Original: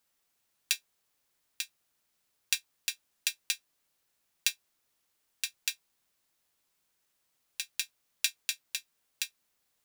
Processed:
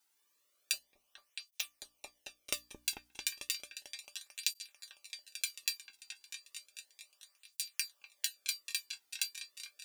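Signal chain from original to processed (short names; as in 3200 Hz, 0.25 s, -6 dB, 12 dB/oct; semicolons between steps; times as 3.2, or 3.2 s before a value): 0.73–2.54 minimum comb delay 0.33 ms; bell 160 Hz -14.5 dB 1.1 oct; notches 60/120/180/240/300 Hz; compressor, threshold -31 dBFS, peak gain reduction 8.5 dB; resonator 590 Hz, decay 0.17 s, harmonics all, mix 80%; repeats that get brighter 0.222 s, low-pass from 400 Hz, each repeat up 2 oct, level -3 dB; tape flanging out of phase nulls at 0.33 Hz, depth 1.8 ms; gain +15 dB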